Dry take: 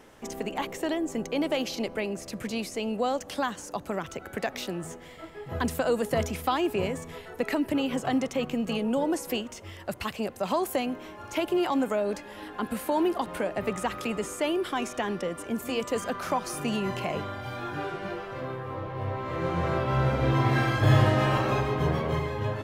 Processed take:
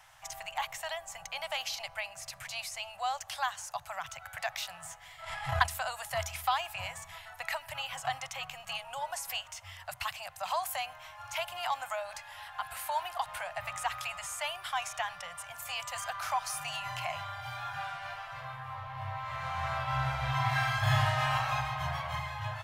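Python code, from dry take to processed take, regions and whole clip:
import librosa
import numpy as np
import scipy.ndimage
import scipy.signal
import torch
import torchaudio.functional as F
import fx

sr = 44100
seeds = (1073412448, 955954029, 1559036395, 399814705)

y = fx.chain(x, sr, fx.steep_lowpass(hz=12000.0, slope=48),
    fx.transient(attack_db=11, sustain_db=-1),
    fx.pre_swell(db_per_s=48.0), at=(5.22, 5.67))
y = scipy.signal.sosfilt(scipy.signal.ellip(3, 1.0, 40, [130.0, 710.0], 'bandstop', fs=sr, output='sos'), y)
y = fx.low_shelf(y, sr, hz=460.0, db=-7.5)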